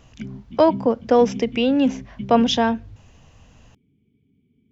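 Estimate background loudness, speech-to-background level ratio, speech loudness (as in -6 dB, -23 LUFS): -34.5 LUFS, 15.0 dB, -19.5 LUFS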